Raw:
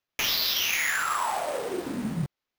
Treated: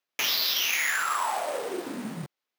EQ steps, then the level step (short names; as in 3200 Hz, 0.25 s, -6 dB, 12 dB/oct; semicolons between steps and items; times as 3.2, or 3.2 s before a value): Bessel high-pass 280 Hz, order 2; 0.0 dB